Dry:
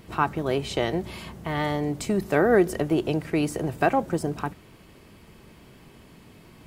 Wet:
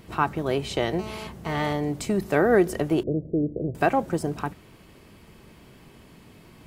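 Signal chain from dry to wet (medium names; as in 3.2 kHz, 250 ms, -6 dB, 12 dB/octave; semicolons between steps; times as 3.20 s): 0.99–1.73 s: mobile phone buzz -38 dBFS; 3.03–3.75 s: steep low-pass 590 Hz 48 dB/octave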